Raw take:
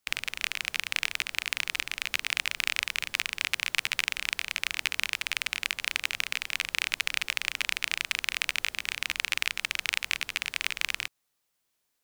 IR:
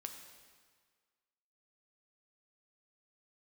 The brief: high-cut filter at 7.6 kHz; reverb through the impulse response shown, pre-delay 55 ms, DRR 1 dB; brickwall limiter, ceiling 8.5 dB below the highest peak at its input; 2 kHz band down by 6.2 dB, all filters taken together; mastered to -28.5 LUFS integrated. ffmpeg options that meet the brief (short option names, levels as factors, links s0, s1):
-filter_complex "[0:a]lowpass=7600,equalizer=f=2000:t=o:g=-8,alimiter=limit=0.15:level=0:latency=1,asplit=2[s0][s1];[1:a]atrim=start_sample=2205,adelay=55[s2];[s1][s2]afir=irnorm=-1:irlink=0,volume=1.33[s3];[s0][s3]amix=inputs=2:normalize=0,volume=2.37"